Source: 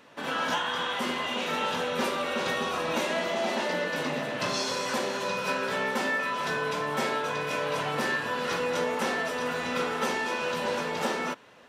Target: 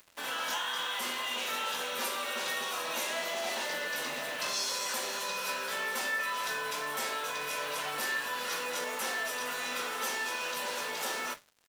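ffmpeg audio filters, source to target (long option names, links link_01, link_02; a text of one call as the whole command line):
ffmpeg -i in.wav -filter_complex "[0:a]highpass=frequency=820:poles=1,aemphasis=mode=production:type=50fm,asplit=2[link_01][link_02];[link_02]alimiter=level_in=2dB:limit=-24dB:level=0:latency=1,volume=-2dB,volume=2dB[link_03];[link_01][link_03]amix=inputs=2:normalize=0,acompressor=mode=upward:threshold=-42dB:ratio=2.5,asplit=2[link_04][link_05];[link_05]adelay=21,volume=-13dB[link_06];[link_04][link_06]amix=inputs=2:normalize=0,flanger=delay=9.6:depth=3.6:regen=-85:speed=1.1:shape=triangular,acrusher=bits=6:mix=0:aa=0.5,volume=-4.5dB" out.wav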